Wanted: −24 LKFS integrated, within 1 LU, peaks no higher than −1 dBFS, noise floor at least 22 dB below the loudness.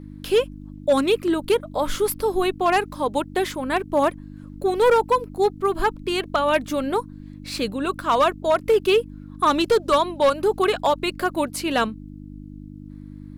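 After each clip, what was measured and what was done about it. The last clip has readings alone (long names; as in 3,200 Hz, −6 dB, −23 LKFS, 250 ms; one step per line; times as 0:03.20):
share of clipped samples 0.8%; peaks flattened at −11.5 dBFS; mains hum 50 Hz; hum harmonics up to 300 Hz; level of the hum −36 dBFS; integrated loudness −22.0 LKFS; sample peak −11.5 dBFS; target loudness −24.0 LKFS
→ clipped peaks rebuilt −11.5 dBFS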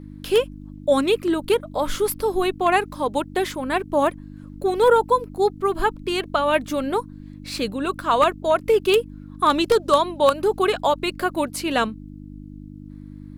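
share of clipped samples 0.0%; mains hum 50 Hz; hum harmonics up to 300 Hz; level of the hum −36 dBFS
→ hum removal 50 Hz, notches 6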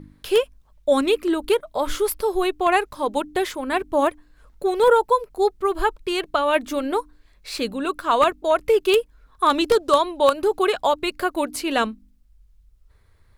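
mains hum none found; integrated loudness −21.5 LKFS; sample peak −2.5 dBFS; target loudness −24.0 LKFS
→ level −2.5 dB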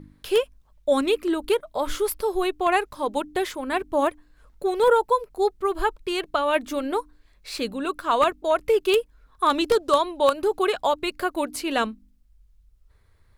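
integrated loudness −24.0 LKFS; sample peak −5.0 dBFS; background noise floor −59 dBFS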